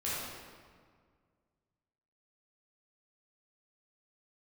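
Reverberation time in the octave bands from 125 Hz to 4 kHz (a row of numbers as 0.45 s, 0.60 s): 2.4 s, 2.2 s, 1.9 s, 1.8 s, 1.5 s, 1.2 s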